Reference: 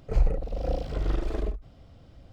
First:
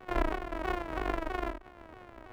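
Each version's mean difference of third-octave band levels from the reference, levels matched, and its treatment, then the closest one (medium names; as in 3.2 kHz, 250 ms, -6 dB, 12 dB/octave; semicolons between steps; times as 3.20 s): 7.5 dB: sorted samples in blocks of 128 samples; three-band isolator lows -13 dB, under 380 Hz, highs -21 dB, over 2.5 kHz; in parallel at +3 dB: compression, threshold -48 dBFS, peak gain reduction 21 dB; on the sum: vibrato with a chosen wave saw down 3.1 Hz, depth 160 cents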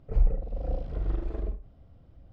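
4.5 dB: tracing distortion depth 0.026 ms; low-pass 1.4 kHz 6 dB/octave; bass shelf 120 Hz +6 dB; Schroeder reverb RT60 0.3 s, combs from 32 ms, DRR 9.5 dB; trim -6.5 dB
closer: second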